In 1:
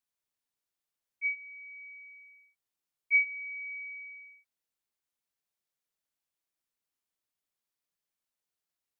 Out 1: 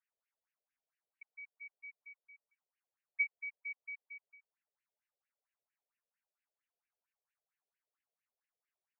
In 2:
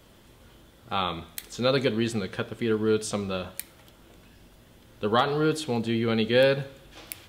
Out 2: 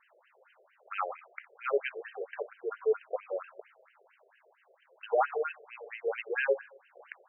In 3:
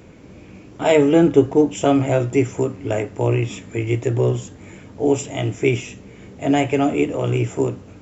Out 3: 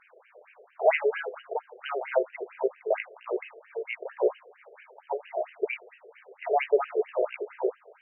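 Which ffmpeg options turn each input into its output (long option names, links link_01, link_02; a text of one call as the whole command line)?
ffmpeg -i in.wav -af "acrusher=samples=3:mix=1:aa=0.000001,afftfilt=real='re*between(b*sr/1024,490*pow(2200/490,0.5+0.5*sin(2*PI*4.4*pts/sr))/1.41,490*pow(2200/490,0.5+0.5*sin(2*PI*4.4*pts/sr))*1.41)':imag='im*between(b*sr/1024,490*pow(2200/490,0.5+0.5*sin(2*PI*4.4*pts/sr))/1.41,490*pow(2200/490,0.5+0.5*sin(2*PI*4.4*pts/sr))*1.41)':win_size=1024:overlap=0.75" out.wav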